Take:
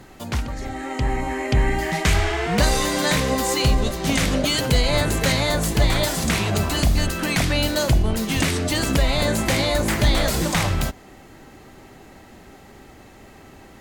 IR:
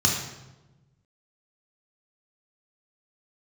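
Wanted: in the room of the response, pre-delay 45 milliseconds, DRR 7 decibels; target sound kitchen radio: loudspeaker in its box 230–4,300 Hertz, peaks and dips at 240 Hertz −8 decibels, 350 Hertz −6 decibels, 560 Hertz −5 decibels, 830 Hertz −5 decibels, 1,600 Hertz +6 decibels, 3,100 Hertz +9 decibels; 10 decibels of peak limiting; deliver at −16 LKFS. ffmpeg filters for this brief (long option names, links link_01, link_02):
-filter_complex "[0:a]alimiter=limit=-19.5dB:level=0:latency=1,asplit=2[link_01][link_02];[1:a]atrim=start_sample=2205,adelay=45[link_03];[link_02][link_03]afir=irnorm=-1:irlink=0,volume=-20.5dB[link_04];[link_01][link_04]amix=inputs=2:normalize=0,highpass=230,equalizer=frequency=240:width_type=q:width=4:gain=-8,equalizer=frequency=350:width_type=q:width=4:gain=-6,equalizer=frequency=560:width_type=q:width=4:gain=-5,equalizer=frequency=830:width_type=q:width=4:gain=-5,equalizer=frequency=1600:width_type=q:width=4:gain=6,equalizer=frequency=3100:width_type=q:width=4:gain=9,lowpass=frequency=4300:width=0.5412,lowpass=frequency=4300:width=1.3066,volume=12.5dB"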